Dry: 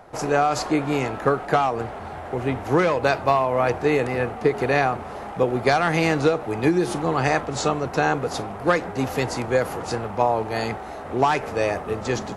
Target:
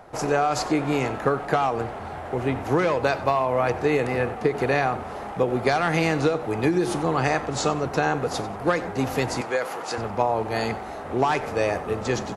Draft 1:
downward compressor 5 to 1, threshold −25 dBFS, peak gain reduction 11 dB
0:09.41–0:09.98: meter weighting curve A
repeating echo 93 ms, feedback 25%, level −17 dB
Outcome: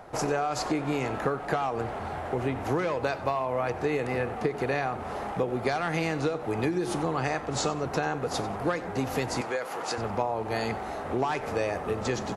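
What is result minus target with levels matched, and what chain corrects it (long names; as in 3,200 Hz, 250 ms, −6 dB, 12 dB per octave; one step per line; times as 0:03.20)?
downward compressor: peak gain reduction +7 dB
downward compressor 5 to 1, threshold −16.5 dBFS, peak gain reduction 4 dB
0:09.41–0:09.98: meter weighting curve A
repeating echo 93 ms, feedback 25%, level −17 dB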